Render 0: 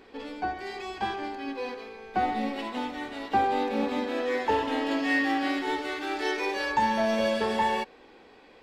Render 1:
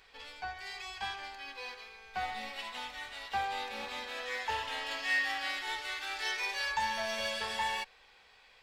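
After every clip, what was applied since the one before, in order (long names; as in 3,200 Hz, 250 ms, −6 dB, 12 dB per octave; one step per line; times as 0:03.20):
guitar amp tone stack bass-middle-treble 10-0-10
level +2 dB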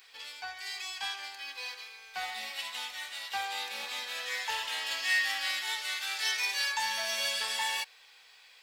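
spectral tilt +4 dB per octave
level −1.5 dB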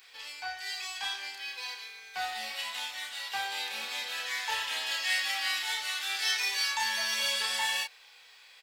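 double-tracking delay 31 ms −3 dB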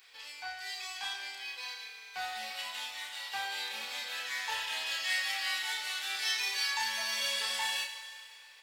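four-comb reverb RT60 2.3 s, combs from 33 ms, DRR 8 dB
level −3.5 dB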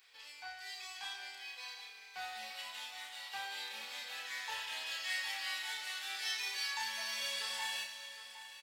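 single-tap delay 760 ms −13 dB
level −6 dB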